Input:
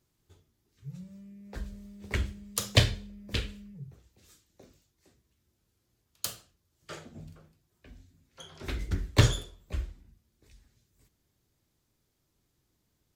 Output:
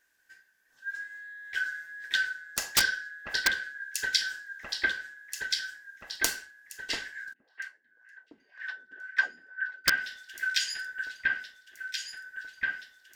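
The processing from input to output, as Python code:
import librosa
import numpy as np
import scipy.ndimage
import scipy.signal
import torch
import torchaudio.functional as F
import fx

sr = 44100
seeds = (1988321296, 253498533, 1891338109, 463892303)

y = fx.band_shuffle(x, sr, order='4123')
y = fx.peak_eq(y, sr, hz=130.0, db=-6.5, octaves=0.76)
y = fx.echo_alternate(y, sr, ms=689, hz=2500.0, feedback_pct=70, wet_db=-3)
y = fx.wah_lfo(y, sr, hz=2.0, low_hz=240.0, high_hz=1700.0, q=3.0, at=(7.32, 9.84), fade=0.02)
y = (np.mod(10.0 ** (13.5 / 20.0) * y + 1.0, 2.0) - 1.0) / 10.0 ** (13.5 / 20.0)
y = fx.rider(y, sr, range_db=4, speed_s=0.5)
y = fx.dynamic_eq(y, sr, hz=4400.0, q=0.77, threshold_db=-46.0, ratio=4.0, max_db=5)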